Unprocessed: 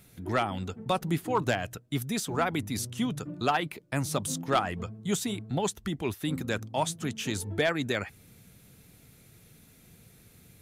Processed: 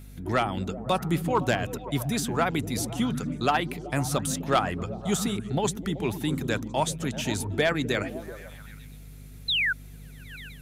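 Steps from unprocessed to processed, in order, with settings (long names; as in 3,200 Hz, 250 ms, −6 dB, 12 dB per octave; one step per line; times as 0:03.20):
sound drawn into the spectrogram fall, 0:09.48–0:09.73, 1,400–4,200 Hz −27 dBFS
mains hum 50 Hz, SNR 16 dB
echo through a band-pass that steps 127 ms, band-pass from 170 Hz, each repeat 0.7 octaves, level −5 dB
level +2.5 dB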